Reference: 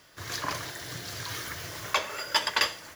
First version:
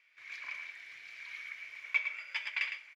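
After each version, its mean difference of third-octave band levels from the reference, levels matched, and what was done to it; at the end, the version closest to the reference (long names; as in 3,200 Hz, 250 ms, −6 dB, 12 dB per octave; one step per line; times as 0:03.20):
18.5 dB: resonant band-pass 2,300 Hz, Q 18
single-tap delay 109 ms −8 dB
level +7.5 dB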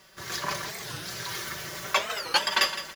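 2.0 dB: comb filter 5.2 ms, depth 71%
on a send: repeating echo 164 ms, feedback 34%, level −12 dB
on the sum: wow of a warped record 45 rpm, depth 250 cents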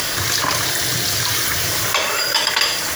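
5.5 dB: upward compression, threshold −33 dBFS
high-shelf EQ 3,200 Hz +8 dB
envelope flattener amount 70%
level +2 dB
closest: second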